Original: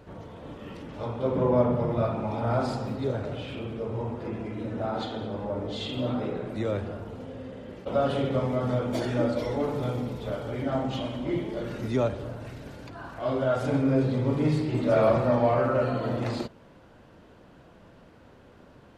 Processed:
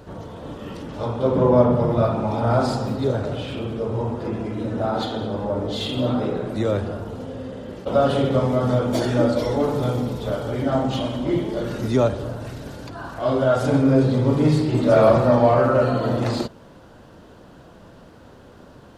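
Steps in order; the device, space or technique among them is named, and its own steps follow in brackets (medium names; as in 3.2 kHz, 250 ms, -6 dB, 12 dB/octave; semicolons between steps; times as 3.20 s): exciter from parts (in parallel at -5 dB: high-pass 2.1 kHz 24 dB/octave + saturation -38.5 dBFS, distortion -13 dB); on the sum: trim +7 dB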